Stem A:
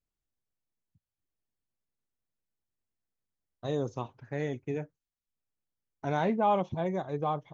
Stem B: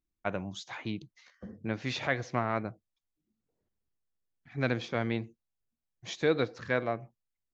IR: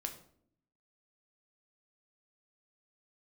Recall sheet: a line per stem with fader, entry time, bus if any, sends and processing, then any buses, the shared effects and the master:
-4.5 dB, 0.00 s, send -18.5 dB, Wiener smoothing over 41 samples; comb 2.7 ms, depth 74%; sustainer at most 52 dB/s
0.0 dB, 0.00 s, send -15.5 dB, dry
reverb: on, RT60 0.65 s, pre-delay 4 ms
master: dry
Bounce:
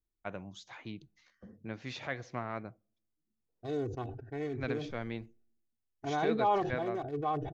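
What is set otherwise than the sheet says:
stem B 0.0 dB -> -8.0 dB; reverb return -9.5 dB

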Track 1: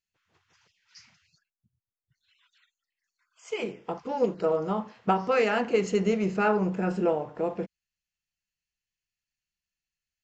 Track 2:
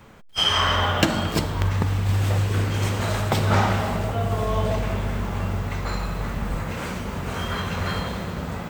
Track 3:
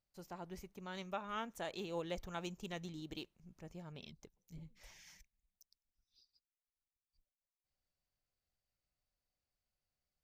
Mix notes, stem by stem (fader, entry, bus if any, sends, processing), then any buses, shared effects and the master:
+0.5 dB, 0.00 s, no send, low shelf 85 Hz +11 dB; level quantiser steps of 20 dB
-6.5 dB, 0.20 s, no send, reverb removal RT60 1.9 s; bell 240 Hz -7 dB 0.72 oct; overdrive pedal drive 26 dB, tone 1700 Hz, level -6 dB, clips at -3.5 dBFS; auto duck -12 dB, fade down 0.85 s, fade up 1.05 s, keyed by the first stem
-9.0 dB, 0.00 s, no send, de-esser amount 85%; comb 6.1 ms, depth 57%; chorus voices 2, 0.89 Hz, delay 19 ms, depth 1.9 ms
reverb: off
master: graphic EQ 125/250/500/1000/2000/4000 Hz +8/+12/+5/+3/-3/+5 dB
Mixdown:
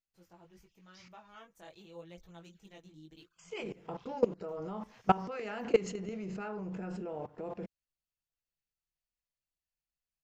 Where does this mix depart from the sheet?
stem 2: muted; master: missing graphic EQ 125/250/500/1000/2000/4000 Hz +8/+12/+5/+3/-3/+5 dB

